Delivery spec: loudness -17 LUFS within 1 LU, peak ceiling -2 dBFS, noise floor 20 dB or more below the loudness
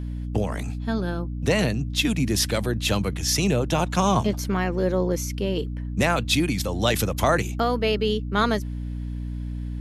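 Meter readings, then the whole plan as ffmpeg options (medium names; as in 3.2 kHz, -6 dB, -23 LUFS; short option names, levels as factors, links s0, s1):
hum 60 Hz; highest harmonic 300 Hz; hum level -27 dBFS; loudness -24.0 LUFS; peak level -8.0 dBFS; loudness target -17.0 LUFS
-> -af "bandreject=f=60:t=h:w=6,bandreject=f=120:t=h:w=6,bandreject=f=180:t=h:w=6,bandreject=f=240:t=h:w=6,bandreject=f=300:t=h:w=6"
-af "volume=2.24,alimiter=limit=0.794:level=0:latency=1"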